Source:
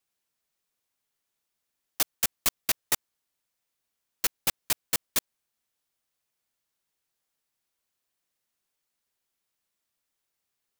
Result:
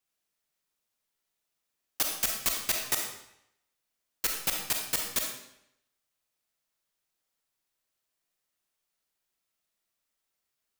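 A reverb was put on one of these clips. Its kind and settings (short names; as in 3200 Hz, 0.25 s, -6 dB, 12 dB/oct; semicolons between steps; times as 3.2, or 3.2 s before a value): digital reverb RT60 0.77 s, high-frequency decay 0.95×, pre-delay 5 ms, DRR 1 dB; gain -3 dB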